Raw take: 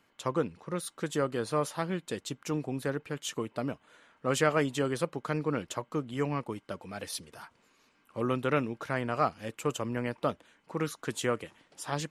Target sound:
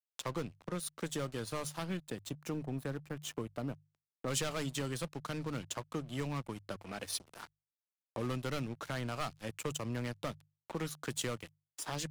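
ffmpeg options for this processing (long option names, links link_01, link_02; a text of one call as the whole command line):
ffmpeg -i in.wav -filter_complex "[0:a]aeval=exprs='sgn(val(0))*max(abs(val(0))-0.00447,0)':channel_layout=same,asettb=1/sr,asplit=3[link_01][link_02][link_03];[link_01]atrim=end=1.974[link_04];[link_02]atrim=start=1.97:end=4.28,asetpts=PTS-STARTPTS,afade=type=in:duration=0.004:curve=qsin,afade=type=out:start_time=2.306:duration=0.004:curve=qsin,equalizer=frequency=5200:width=0.37:gain=-8[link_05];[link_03]atrim=start=4.276[link_06];[link_04][link_05]acrossfade=duration=0.004:curve1=hsin:curve2=qsin[link_07];[link_07][link_06]acrossfade=duration=0.004:curve1=qsin:curve2=hsin,volume=24.5dB,asoftclip=hard,volume=-24.5dB,acrossover=split=160|3000[link_08][link_09][link_10];[link_09]acompressor=threshold=-42dB:ratio=2.5[link_11];[link_08][link_11][link_10]amix=inputs=3:normalize=0,adynamicequalizer=threshold=0.00224:dfrequency=440:dqfactor=2.1:tfrequency=440:tqfactor=2.1:attack=5:release=100:ratio=0.375:range=2:mode=cutabove:tftype=bell,acompressor=mode=upward:threshold=-41dB:ratio=2.5,bandreject=frequency=50:width_type=h:width=6,bandreject=frequency=100:width_type=h:width=6,bandreject=frequency=150:width_type=h:width=6,volume=2dB" out.wav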